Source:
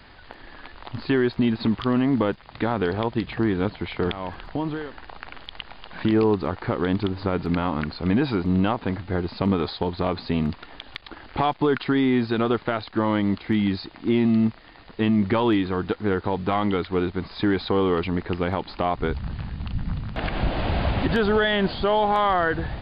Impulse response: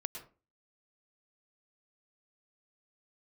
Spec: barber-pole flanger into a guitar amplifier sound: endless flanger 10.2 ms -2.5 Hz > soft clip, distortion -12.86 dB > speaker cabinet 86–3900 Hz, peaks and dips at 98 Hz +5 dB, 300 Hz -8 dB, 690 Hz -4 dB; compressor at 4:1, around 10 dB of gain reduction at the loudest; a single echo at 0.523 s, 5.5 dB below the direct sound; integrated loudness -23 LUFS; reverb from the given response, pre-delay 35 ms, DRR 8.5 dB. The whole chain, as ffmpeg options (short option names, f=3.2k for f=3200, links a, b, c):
-filter_complex "[0:a]acompressor=threshold=-29dB:ratio=4,aecho=1:1:523:0.531,asplit=2[a][b];[1:a]atrim=start_sample=2205,adelay=35[c];[b][c]afir=irnorm=-1:irlink=0,volume=-8dB[d];[a][d]amix=inputs=2:normalize=0,asplit=2[e][f];[f]adelay=10.2,afreqshift=-2.5[g];[e][g]amix=inputs=2:normalize=1,asoftclip=threshold=-30dB,highpass=86,equalizer=f=98:t=q:w=4:g=5,equalizer=f=300:t=q:w=4:g=-8,equalizer=f=690:t=q:w=4:g=-4,lowpass=f=3.9k:w=0.5412,lowpass=f=3.9k:w=1.3066,volume=15.5dB"